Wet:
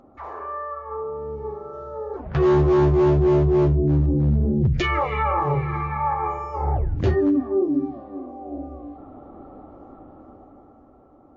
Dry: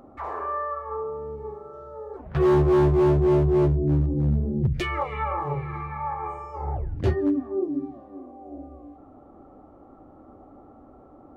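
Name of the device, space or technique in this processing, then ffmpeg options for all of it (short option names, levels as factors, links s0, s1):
low-bitrate web radio: -af "dynaudnorm=f=120:g=21:m=3.16,alimiter=limit=0.299:level=0:latency=1:release=12,volume=0.75" -ar 16000 -c:a libmp3lame -b:a 32k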